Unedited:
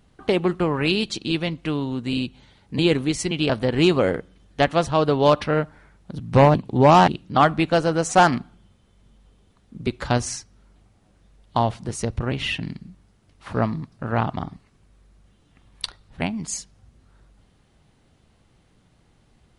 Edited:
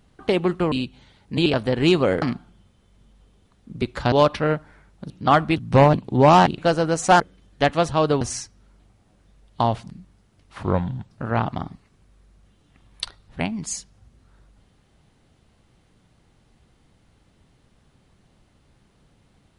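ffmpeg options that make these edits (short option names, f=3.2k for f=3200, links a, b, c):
-filter_complex "[0:a]asplit=13[a][b][c][d][e][f][g][h][i][j][k][l][m];[a]atrim=end=0.722[n];[b]atrim=start=2.128:end=2.872[o];[c]atrim=start=3.418:end=4.182[p];[d]atrim=start=8.268:end=10.172[q];[e]atrim=start=5.188:end=6.172[r];[f]atrim=start=7.188:end=7.652[s];[g]atrim=start=6.168:end=7.192[t];[h]atrim=start=7.648:end=8.272[u];[i]atrim=start=4.178:end=5.192[v];[j]atrim=start=10.168:end=11.862[w];[k]atrim=start=12.798:end=13.534[x];[l]atrim=start=13.53:end=13.91,asetpts=PTS-STARTPTS,asetrate=35721,aresample=44100[y];[m]atrim=start=13.906[z];[n][o]acrossfade=d=0.004:c1=hsin:c2=hsin[aa];[aa][p]acrossfade=d=0.004:c1=hsin:c2=hsin[ab];[ab][q]acrossfade=d=0.004:c1=hsin:c2=hsin[ac];[ac][r]acrossfade=d=0.004:c1=hsin:c2=hsin[ad];[ad][s]acrossfade=d=0.004:c1=hsin:c2=hsin[ae];[ae][t]acrossfade=d=0.004:c1=hsin:c2=hsin[af];[af][u]acrossfade=d=0.004:c1=hsin:c2=hsin[ag];[ag][v]acrossfade=d=0.004:c1=hsin:c2=hsin[ah];[ah][w]acrossfade=d=0.004:c1=hsin:c2=hsin[ai];[ai][x]acrossfade=d=0.004:c1=hsin:c2=hsin[aj];[aj][y]acrossfade=d=0.004:c1=hsin:c2=hsin[ak];[ak][z]acrossfade=d=0.004:c1=hsin:c2=hsin"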